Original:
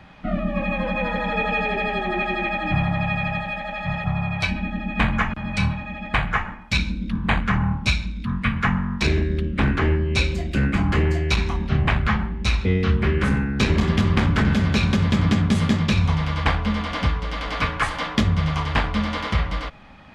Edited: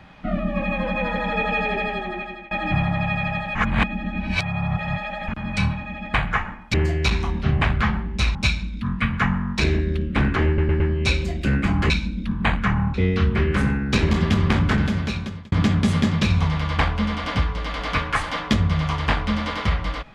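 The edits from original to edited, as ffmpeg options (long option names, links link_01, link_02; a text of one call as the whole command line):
ffmpeg -i in.wav -filter_complex "[0:a]asplit=12[link_01][link_02][link_03][link_04][link_05][link_06][link_07][link_08][link_09][link_10][link_11][link_12];[link_01]atrim=end=2.51,asetpts=PTS-STARTPTS,afade=type=out:start_time=1.76:duration=0.75:silence=0.0749894[link_13];[link_02]atrim=start=2.51:end=3.552,asetpts=PTS-STARTPTS,afade=type=in:duration=0.004:curve=hsin:silence=0.0749894[link_14];[link_03]atrim=start=3.548:end=5.282,asetpts=PTS-STARTPTS,areverse[link_15];[link_04]atrim=start=5.278:end=6.742[link_16];[link_05]atrim=start=10.998:end=12.612[link_17];[link_06]atrim=start=7.778:end=10.012[link_18];[link_07]atrim=start=9.898:end=10.012[link_19];[link_08]atrim=start=9.898:end=10.012[link_20];[link_09]atrim=start=9.898:end=11.002[link_21];[link_10]atrim=start=6.738:end=7.782[link_22];[link_11]atrim=start=12.608:end=15.19,asetpts=PTS-STARTPTS,afade=type=out:start_time=1.742:duration=0.84[link_23];[link_12]atrim=start=15.19,asetpts=PTS-STARTPTS,afade=type=in:duration=0.004:curve=hsin[link_24];[link_13][link_14]concat=n=2:v=0:a=1[link_25];[link_25][link_15]acrossfade=duration=0.004:curve1=hsin:curve2=hsin[link_26];[link_26][link_16]acrossfade=duration=0.004:curve1=hsin:curve2=hsin[link_27];[link_27][link_17]acrossfade=duration=0.004:curve1=hsin:curve2=hsin[link_28];[link_28][link_18]acrossfade=duration=0.004:curve1=hsin:curve2=hsin[link_29];[link_29][link_19]acrossfade=duration=0.004:curve1=hsin:curve2=hsin[link_30];[link_30][link_20]acrossfade=duration=0.004:curve1=hsin:curve2=hsin[link_31];[link_31][link_21]acrossfade=duration=0.004:curve1=hsin:curve2=hsin[link_32];[link_32][link_22]acrossfade=duration=0.004:curve1=hsin:curve2=hsin[link_33];[link_23][link_24]concat=n=2:v=0:a=1[link_34];[link_33][link_34]acrossfade=duration=0.004:curve1=hsin:curve2=hsin" out.wav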